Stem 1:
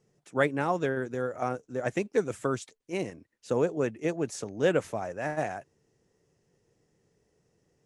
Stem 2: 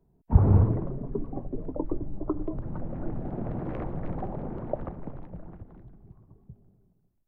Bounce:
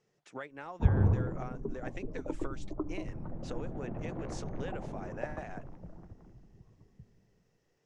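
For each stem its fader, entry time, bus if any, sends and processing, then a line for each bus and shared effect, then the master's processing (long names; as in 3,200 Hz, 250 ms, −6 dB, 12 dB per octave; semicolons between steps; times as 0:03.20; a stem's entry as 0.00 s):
+0.5 dB, 0.00 s, no send, low-pass filter 5,100 Hz 12 dB per octave; low-shelf EQ 480 Hz −10.5 dB; downward compressor 6 to 1, threshold −41 dBFS, peak gain reduction 17.5 dB
−6.5 dB, 0.50 s, no send, no processing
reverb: not used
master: no processing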